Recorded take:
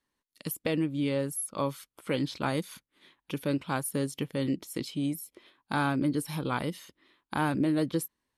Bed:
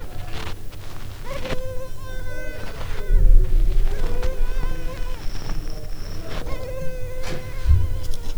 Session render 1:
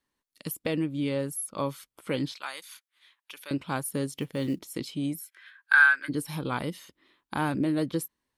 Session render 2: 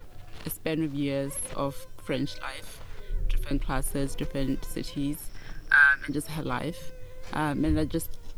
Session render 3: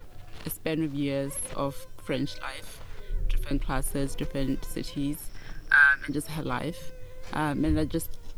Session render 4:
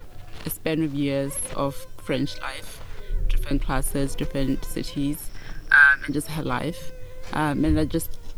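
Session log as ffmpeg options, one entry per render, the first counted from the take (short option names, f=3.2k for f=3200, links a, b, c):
-filter_complex "[0:a]asettb=1/sr,asplit=3[a][b][c];[a]atrim=end=2.324[d];[b]atrim=start=2.32:end=3.51,asetpts=PTS-STARTPTS,afade=t=in:d=0.004:c=qsin,afade=t=out:st=1.186:d=0.004:c=qsin,highpass=1.3k[e];[c]atrim=start=3.506[f];[d][e]acrossfade=d=0.004:c1=hsin:c2=qsin[g];[g][f]acrossfade=d=0.004:c1=qsin:c2=hsin,asettb=1/sr,asplit=3[h][i][j];[h]atrim=end=4.114[k];[i]atrim=start=4.11:end=4.63,asetpts=PTS-STARTPTS,afade=t=in:d=0.004:c=qsin,afade=t=out:st=0.516:d=0.004:c=qsin,acrusher=bits=8:mode=log:mix=0:aa=0.000001[l];[j]atrim=start=4.626[m];[k][l]acrossfade=d=0.004:c1=hsin:c2=qsin[n];[n][m]acrossfade=d=0.004:c1=qsin:c2=hsin,asplit=3[o][p][q];[o]afade=t=out:st=5.19:d=0.02[r];[p]highpass=f=1.6k:t=q:w=13,afade=t=in:st=5.19:d=0.02,afade=t=out:st=6.08:d=0.02[s];[q]afade=t=in:st=6.08:d=0.02[t];[r][s][t]amix=inputs=3:normalize=0"
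-filter_complex "[1:a]volume=-14.5dB[a];[0:a][a]amix=inputs=2:normalize=0"
-af anull
-af "volume=4.5dB"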